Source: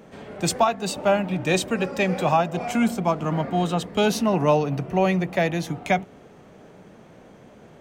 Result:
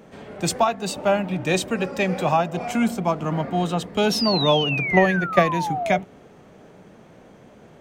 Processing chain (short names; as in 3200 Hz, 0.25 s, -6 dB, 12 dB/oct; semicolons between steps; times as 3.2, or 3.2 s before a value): 4.11–5.98 painted sound fall 580–5600 Hz -26 dBFS; 4.88–5.47 transient shaper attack +10 dB, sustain -8 dB